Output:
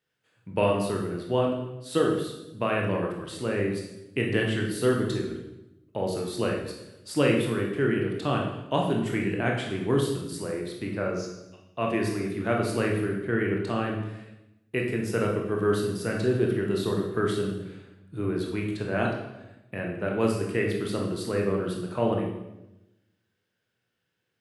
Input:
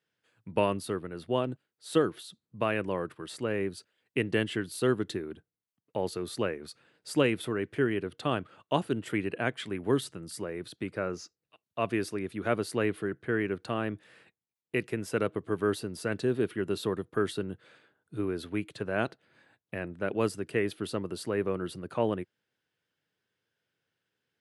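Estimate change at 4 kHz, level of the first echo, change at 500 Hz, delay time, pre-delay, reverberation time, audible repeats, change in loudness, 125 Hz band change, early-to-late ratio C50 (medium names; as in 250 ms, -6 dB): +3.0 dB, no echo, +4.0 dB, no echo, 18 ms, 0.95 s, no echo, +4.0 dB, +7.0 dB, 3.5 dB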